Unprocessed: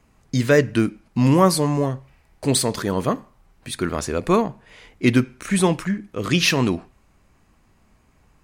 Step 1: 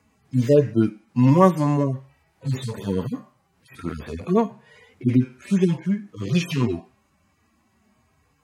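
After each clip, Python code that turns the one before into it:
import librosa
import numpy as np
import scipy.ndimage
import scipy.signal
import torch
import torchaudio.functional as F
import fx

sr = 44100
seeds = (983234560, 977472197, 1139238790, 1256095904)

y = fx.hpss_only(x, sr, part='harmonic')
y = scipy.signal.sosfilt(scipy.signal.butter(4, 81.0, 'highpass', fs=sr, output='sos'), y)
y = F.gain(torch.from_numpy(y), 1.0).numpy()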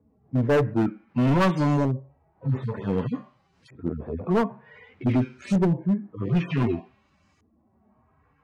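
y = fx.filter_lfo_lowpass(x, sr, shape='saw_up', hz=0.54, low_hz=420.0, high_hz=6500.0, q=1.3)
y = np.clip(y, -10.0 ** (-17.0 / 20.0), 10.0 ** (-17.0 / 20.0))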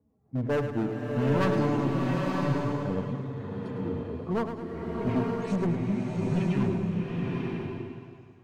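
y = fx.echo_feedback(x, sr, ms=106, feedback_pct=51, wet_db=-9.0)
y = fx.rev_bloom(y, sr, seeds[0], attack_ms=950, drr_db=-1.5)
y = F.gain(torch.from_numpy(y), -7.0).numpy()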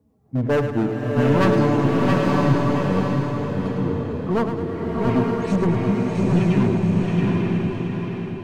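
y = fx.echo_feedback(x, sr, ms=673, feedback_pct=32, wet_db=-5.0)
y = F.gain(torch.from_numpy(y), 7.5).numpy()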